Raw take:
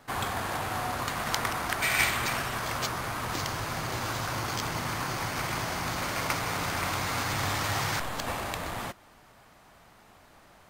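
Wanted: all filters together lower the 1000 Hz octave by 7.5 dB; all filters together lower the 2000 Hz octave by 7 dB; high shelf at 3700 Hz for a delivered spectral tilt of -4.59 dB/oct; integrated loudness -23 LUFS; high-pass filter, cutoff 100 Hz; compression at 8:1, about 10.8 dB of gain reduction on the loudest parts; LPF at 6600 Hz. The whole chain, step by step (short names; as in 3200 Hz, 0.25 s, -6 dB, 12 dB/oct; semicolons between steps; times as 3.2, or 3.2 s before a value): HPF 100 Hz; LPF 6600 Hz; bell 1000 Hz -8 dB; bell 2000 Hz -4 dB; high shelf 3700 Hz -8 dB; compressor 8:1, threshold -39 dBFS; gain +19.5 dB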